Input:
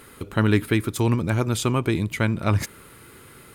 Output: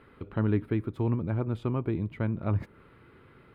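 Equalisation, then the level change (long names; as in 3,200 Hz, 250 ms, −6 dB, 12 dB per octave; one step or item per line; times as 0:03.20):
dynamic equaliser 4,100 Hz, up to −5 dB, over −42 dBFS, Q 0.74
dynamic equaliser 1,900 Hz, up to −5 dB, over −40 dBFS, Q 0.8
high-frequency loss of the air 430 metres
−6.0 dB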